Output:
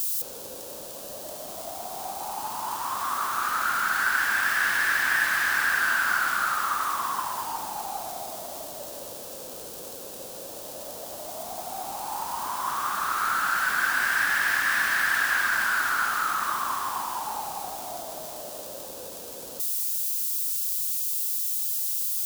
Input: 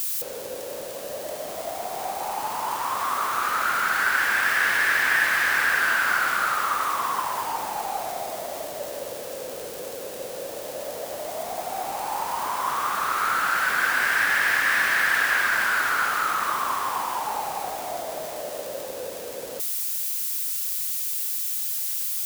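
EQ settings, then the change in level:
dynamic equaliser 1,700 Hz, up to +7 dB, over −35 dBFS, Q 1.9
octave-band graphic EQ 125/500/2,000 Hz −3/−9/−11 dB
0.0 dB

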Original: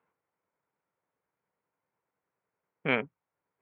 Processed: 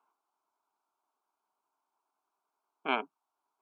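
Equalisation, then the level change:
resonant band-pass 700 Hz, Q 0.57
spectral tilt +4 dB per octave
phaser with its sweep stopped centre 510 Hz, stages 6
+7.0 dB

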